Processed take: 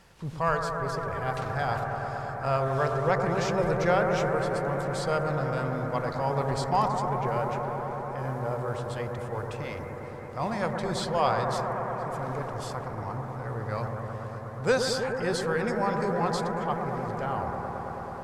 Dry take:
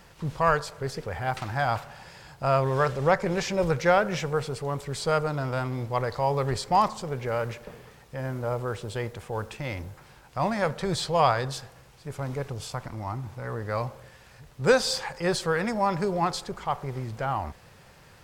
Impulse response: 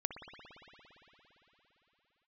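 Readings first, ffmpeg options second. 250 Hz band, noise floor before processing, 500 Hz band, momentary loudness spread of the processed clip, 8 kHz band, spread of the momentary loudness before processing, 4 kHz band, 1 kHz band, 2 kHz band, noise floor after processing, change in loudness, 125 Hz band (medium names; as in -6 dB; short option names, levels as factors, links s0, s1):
-0.5 dB, -53 dBFS, -1.0 dB, 9 LU, -4.0 dB, 13 LU, -4.0 dB, -1.0 dB, -1.5 dB, -38 dBFS, -1.5 dB, -0.5 dB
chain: -filter_complex "[1:a]atrim=start_sample=2205,asetrate=23814,aresample=44100[s0];[0:a][s0]afir=irnorm=-1:irlink=0,volume=0.501"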